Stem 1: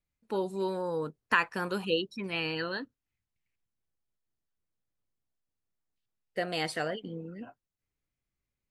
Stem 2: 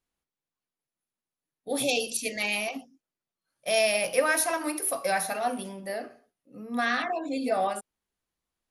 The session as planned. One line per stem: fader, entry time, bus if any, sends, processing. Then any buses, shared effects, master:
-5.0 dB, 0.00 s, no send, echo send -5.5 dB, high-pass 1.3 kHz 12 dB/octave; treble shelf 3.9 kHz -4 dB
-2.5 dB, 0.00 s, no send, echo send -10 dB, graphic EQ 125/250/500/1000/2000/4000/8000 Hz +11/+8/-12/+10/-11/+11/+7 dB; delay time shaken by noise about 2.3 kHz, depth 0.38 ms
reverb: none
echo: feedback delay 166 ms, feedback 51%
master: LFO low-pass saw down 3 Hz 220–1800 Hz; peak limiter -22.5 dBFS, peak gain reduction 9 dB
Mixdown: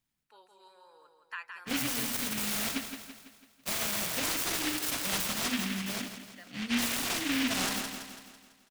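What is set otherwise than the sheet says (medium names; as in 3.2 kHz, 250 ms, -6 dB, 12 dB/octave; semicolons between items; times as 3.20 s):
stem 1 -5.0 dB -> -12.5 dB; master: missing LFO low-pass saw down 3 Hz 220–1800 Hz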